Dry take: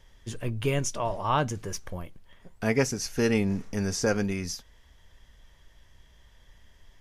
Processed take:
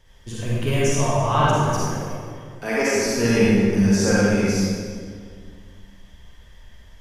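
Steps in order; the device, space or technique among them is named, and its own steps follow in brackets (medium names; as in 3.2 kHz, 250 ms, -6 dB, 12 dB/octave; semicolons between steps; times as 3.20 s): 1.87–2.96 s: high-pass 270 Hz 24 dB/octave; stairwell (reverberation RT60 2.1 s, pre-delay 37 ms, DRR -7.5 dB)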